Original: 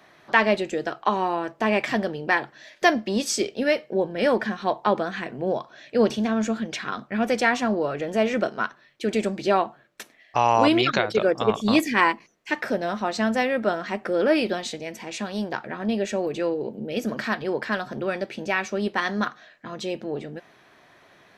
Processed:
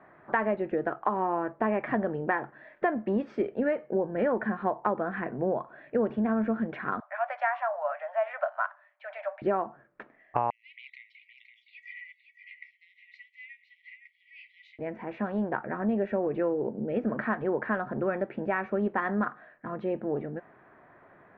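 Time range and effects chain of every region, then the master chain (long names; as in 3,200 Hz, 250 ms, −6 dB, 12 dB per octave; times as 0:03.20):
0:07.00–0:09.42: Chebyshev high-pass filter 580 Hz, order 8 + notch filter 6,100 Hz, Q 23
0:10.50–0:14.79: downward compressor 12 to 1, threshold −23 dBFS + linear-phase brick-wall high-pass 1,900 Hz + single-tap delay 515 ms −9 dB
whole clip: low-pass filter 1,700 Hz 24 dB per octave; downward compressor, threshold −23 dBFS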